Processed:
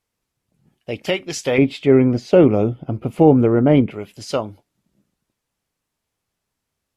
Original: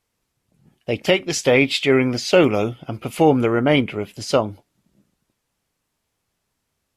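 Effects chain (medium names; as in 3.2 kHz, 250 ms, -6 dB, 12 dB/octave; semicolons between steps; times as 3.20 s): 1.58–3.91 s: tilt shelf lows +10 dB, about 1.1 kHz; trim -4 dB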